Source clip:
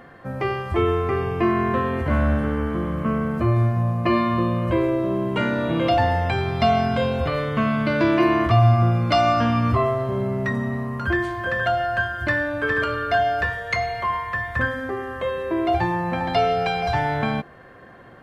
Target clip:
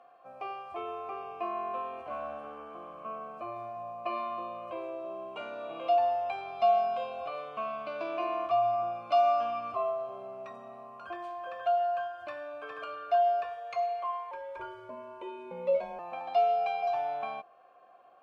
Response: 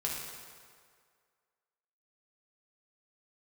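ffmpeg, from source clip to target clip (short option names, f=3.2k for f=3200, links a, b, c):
-filter_complex "[0:a]asplit=3[a][b][c];[a]bandpass=f=730:t=q:w=8,volume=0dB[d];[b]bandpass=f=1.09k:t=q:w=8,volume=-6dB[e];[c]bandpass=f=2.44k:t=q:w=8,volume=-9dB[f];[d][e][f]amix=inputs=3:normalize=0,asettb=1/sr,asplit=3[g][h][i];[g]atrim=end=14.314[j];[h]atrim=start=14.31:end=15.99,asetpts=PTS-STARTPTS,afade=t=in:d=0.004:c=qsin,afade=t=out:st=1.676:d=0.004:c=qsin,afreqshift=-150[k];[i]atrim=start=15.986[l];[j][k]acrossfade=d=0.004:c1=hsin:c2=qsin[m];[m][l]acrossfade=d=0.004:c1=qsin:c2=hsin,bass=f=250:g=-6,treble=f=4k:g=13,volume=-3dB"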